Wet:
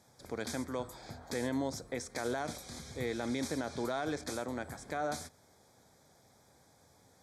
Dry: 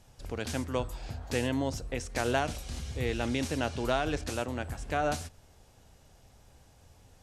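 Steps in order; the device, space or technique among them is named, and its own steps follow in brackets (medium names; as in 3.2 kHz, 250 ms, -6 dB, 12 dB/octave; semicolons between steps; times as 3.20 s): PA system with an anti-feedback notch (high-pass 160 Hz 12 dB/octave; Butterworth band-stop 2.8 kHz, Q 3.1; peak limiter -23.5 dBFS, peak gain reduction 9 dB); trim -1.5 dB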